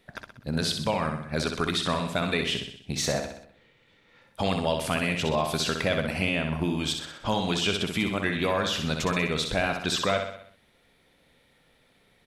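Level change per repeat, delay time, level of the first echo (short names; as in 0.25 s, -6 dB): -5.5 dB, 63 ms, -6.0 dB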